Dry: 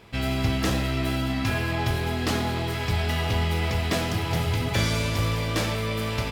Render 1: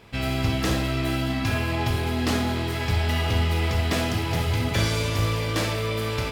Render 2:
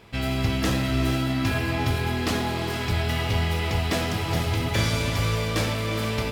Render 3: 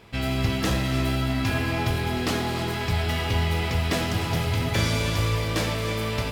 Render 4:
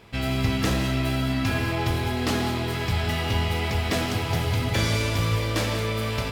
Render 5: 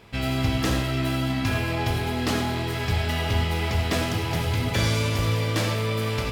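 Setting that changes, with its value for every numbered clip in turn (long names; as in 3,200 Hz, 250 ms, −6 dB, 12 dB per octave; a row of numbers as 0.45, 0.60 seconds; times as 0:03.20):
reverb whose tail is shaped and stops, gate: 80, 510, 350, 220, 120 milliseconds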